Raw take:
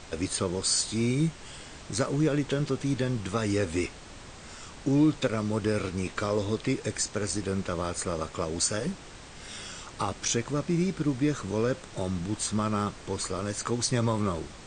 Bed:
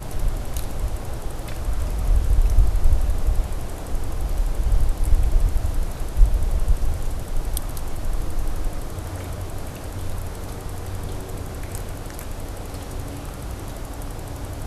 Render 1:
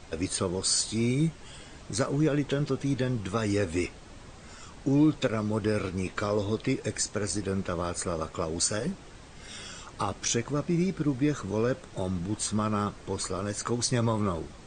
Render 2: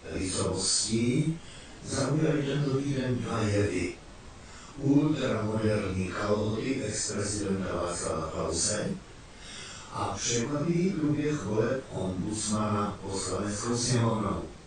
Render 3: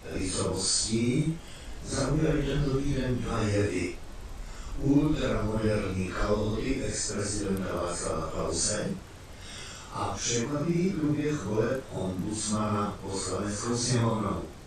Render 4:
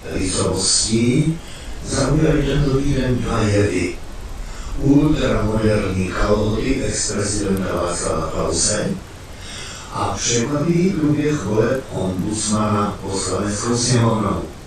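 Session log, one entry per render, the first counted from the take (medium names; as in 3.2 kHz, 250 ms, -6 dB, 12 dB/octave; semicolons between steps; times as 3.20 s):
noise reduction 6 dB, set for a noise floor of -46 dBFS
phase randomisation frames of 200 ms
add bed -19 dB
trim +10.5 dB; peak limiter -3 dBFS, peak gain reduction 2 dB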